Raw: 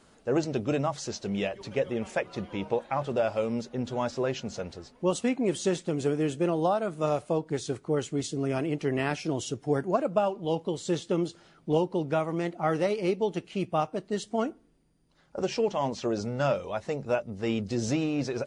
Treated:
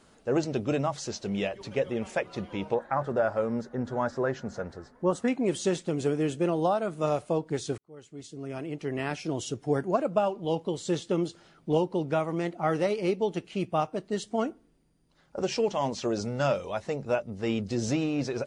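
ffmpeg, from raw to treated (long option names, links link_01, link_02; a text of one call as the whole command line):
ffmpeg -i in.wav -filter_complex "[0:a]asettb=1/sr,asplit=3[link_01][link_02][link_03];[link_01]atrim=end=2.744[link_04];[link_02]atrim=start=2.74:end=5.28,asetpts=PTS-STARTPTS,afade=type=in:duration=0.004:curve=qsin,afade=type=out:start_time=2.536:duration=0.004:curve=qsin,highshelf=frequency=2100:width_type=q:width=3:gain=-7[link_05];[link_03]atrim=start=5.276[link_06];[link_04][link_05]acrossfade=duration=0.004:curve1=hsin:curve2=qsin[link_07];[link_07][link_06]acrossfade=duration=0.004:curve1=qsin:curve2=hsin,asettb=1/sr,asplit=3[link_08][link_09][link_10];[link_08]atrim=end=15.464[link_11];[link_09]atrim=start=15.46:end=16.82,asetpts=PTS-STARTPTS,afade=type=in:duration=0.004:curve=qsin,afade=type=out:start_time=1.356:duration=0.004:curve=qsin,highshelf=frequency=4400:gain=5[link_12];[link_10]atrim=start=16.816[link_13];[link_11][link_12]acrossfade=duration=0.004:curve1=hsin:curve2=qsin[link_14];[link_14][link_13]acrossfade=duration=0.004:curve1=qsin:curve2=hsin,asplit=2[link_15][link_16];[link_15]atrim=end=7.78,asetpts=PTS-STARTPTS,afade=type=out:start_time=7.776:duration=0.004:curve=hsin[link_17];[link_16]atrim=start=7.78,asetpts=PTS-STARTPTS,afade=type=in:duration=1.8[link_18];[link_17][link_18]concat=n=2:v=0:a=1" out.wav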